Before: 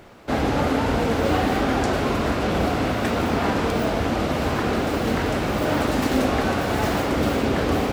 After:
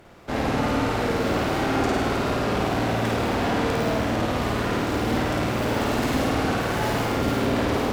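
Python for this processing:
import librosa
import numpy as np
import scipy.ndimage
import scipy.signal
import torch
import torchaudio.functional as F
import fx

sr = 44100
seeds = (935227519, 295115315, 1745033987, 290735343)

p1 = fx.tube_stage(x, sr, drive_db=21.0, bias=0.75)
y = p1 + fx.room_flutter(p1, sr, wall_m=9.0, rt60_s=1.1, dry=0)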